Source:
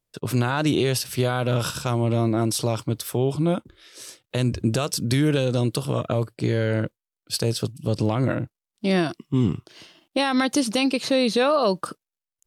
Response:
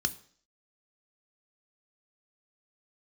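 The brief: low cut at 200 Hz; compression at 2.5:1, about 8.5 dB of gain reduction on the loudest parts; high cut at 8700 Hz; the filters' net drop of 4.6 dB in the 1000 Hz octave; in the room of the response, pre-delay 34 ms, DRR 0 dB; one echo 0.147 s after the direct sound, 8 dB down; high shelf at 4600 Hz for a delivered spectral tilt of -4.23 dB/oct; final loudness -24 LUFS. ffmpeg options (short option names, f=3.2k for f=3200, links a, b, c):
-filter_complex "[0:a]highpass=200,lowpass=8.7k,equalizer=f=1k:t=o:g=-7,highshelf=f=4.6k:g=8.5,acompressor=threshold=-31dB:ratio=2.5,aecho=1:1:147:0.398,asplit=2[a][b];[1:a]atrim=start_sample=2205,adelay=34[c];[b][c]afir=irnorm=-1:irlink=0,volume=-5dB[d];[a][d]amix=inputs=2:normalize=0,volume=3.5dB"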